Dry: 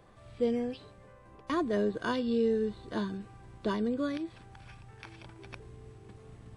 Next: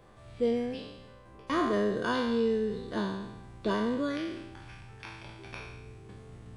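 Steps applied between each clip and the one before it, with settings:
peak hold with a decay on every bin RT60 1.00 s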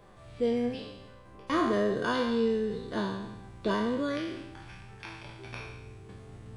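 flanger 0.41 Hz, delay 4.8 ms, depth 6.5 ms, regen +69%
level +5.5 dB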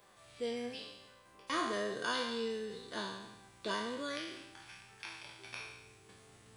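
spectral tilt +3.5 dB per octave
level −6 dB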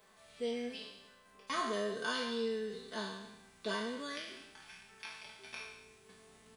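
comb filter 4.6 ms, depth 72%
level −2.5 dB

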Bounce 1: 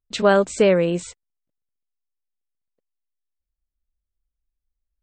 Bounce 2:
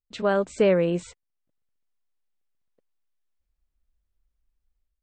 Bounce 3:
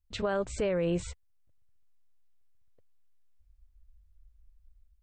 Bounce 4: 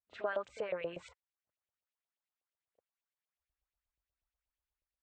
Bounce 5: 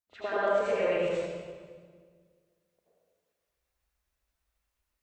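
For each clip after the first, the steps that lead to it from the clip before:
high-shelf EQ 4,400 Hz −9.5 dB; automatic gain control gain up to 14 dB; level −7.5 dB
brickwall limiter −21 dBFS, peak gain reduction 11 dB; low shelf with overshoot 130 Hz +14 dB, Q 1.5
auto-filter band-pass saw up 8.3 Hz 590–3,200 Hz; backwards echo 34 ms −16 dB; level +1 dB
convolution reverb RT60 1.7 s, pre-delay 74 ms, DRR −10.5 dB

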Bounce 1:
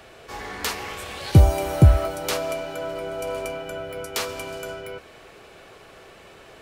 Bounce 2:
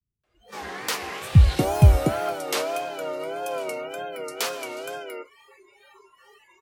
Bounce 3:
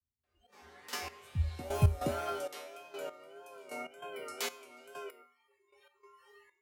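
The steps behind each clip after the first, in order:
multiband delay without the direct sound lows, highs 240 ms, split 190 Hz; tape wow and flutter 120 cents; noise reduction from a noise print of the clip's start 27 dB
tuned comb filter 81 Hz, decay 0.47 s, harmonics odd, mix 90%; gate pattern "xxx...x....x." 97 BPM −12 dB; level +3.5 dB

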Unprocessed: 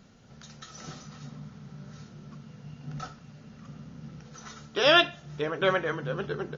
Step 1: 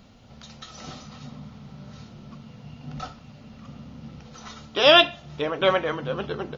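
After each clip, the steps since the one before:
graphic EQ with 15 bands 160 Hz −9 dB, 400 Hz −7 dB, 1,600 Hz −9 dB, 6,300 Hz −9 dB
level +8.5 dB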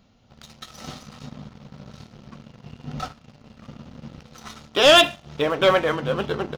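leveller curve on the samples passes 2
level −3 dB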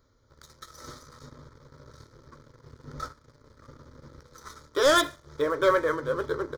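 phaser with its sweep stopped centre 740 Hz, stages 6
level −2 dB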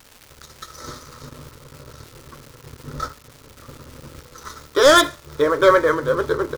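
surface crackle 500 per second −42 dBFS
level +8.5 dB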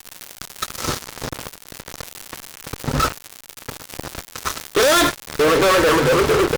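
fuzz pedal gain 35 dB, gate −34 dBFS

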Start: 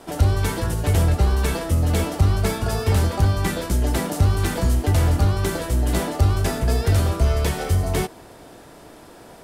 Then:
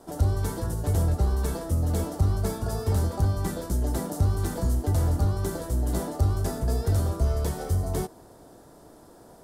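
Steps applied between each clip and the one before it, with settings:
parametric band 2,500 Hz −14 dB 1.2 octaves
level −5.5 dB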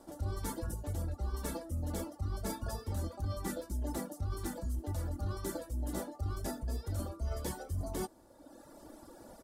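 reverb reduction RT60 1.3 s
comb filter 3.5 ms, depth 51%
reversed playback
downward compressor 6 to 1, threshold −34 dBFS, peak gain reduction 17 dB
reversed playback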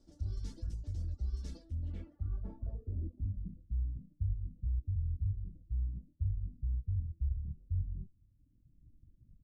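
stylus tracing distortion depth 0.087 ms
guitar amp tone stack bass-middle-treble 10-0-1
low-pass filter sweep 5,400 Hz → 130 Hz, 0:01.54–0:03.58
level +8 dB

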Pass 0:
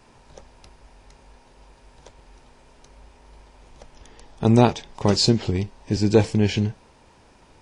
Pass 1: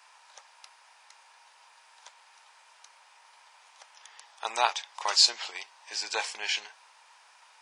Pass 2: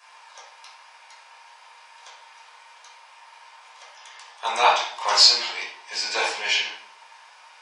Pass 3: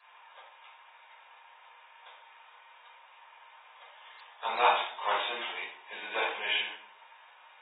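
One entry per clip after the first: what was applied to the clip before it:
high-pass filter 910 Hz 24 dB per octave; level +1.5 dB
convolution reverb RT60 0.60 s, pre-delay 7 ms, DRR −6.5 dB; level −1 dB
level −7 dB; AAC 16 kbit/s 32,000 Hz

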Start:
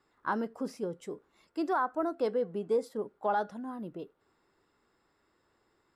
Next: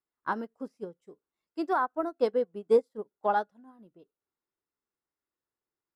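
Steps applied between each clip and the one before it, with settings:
expander for the loud parts 2.5 to 1, over −45 dBFS
level +7.5 dB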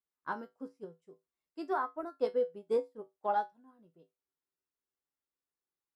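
tuned comb filter 55 Hz, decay 0.19 s, harmonics odd, mix 80%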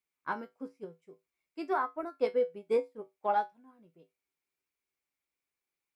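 parametric band 2,300 Hz +14 dB 0.28 octaves
level +2 dB

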